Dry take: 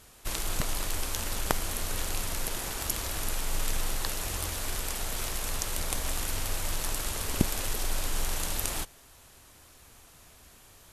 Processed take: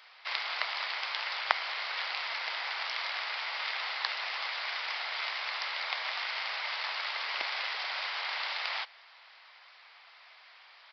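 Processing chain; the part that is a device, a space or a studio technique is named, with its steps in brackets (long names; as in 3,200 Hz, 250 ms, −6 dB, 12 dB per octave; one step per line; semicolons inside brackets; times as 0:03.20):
musical greeting card (downsampling to 11,025 Hz; high-pass filter 770 Hz 24 dB per octave; parametric band 2,100 Hz +8 dB 0.28 octaves)
level +3.5 dB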